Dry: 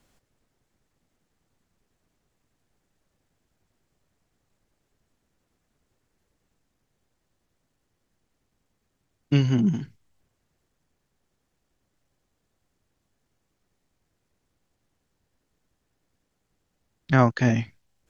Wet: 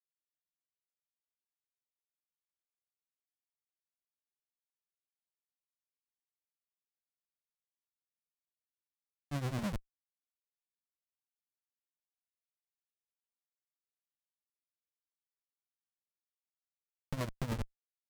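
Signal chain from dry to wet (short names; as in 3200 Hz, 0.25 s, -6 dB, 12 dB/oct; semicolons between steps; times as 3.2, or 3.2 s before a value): elliptic low-pass 990 Hz; Schmitt trigger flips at -25 dBFS; grains 0.144 s, grains 9.8/s, spray 10 ms, pitch spread up and down by 0 st; gain +1 dB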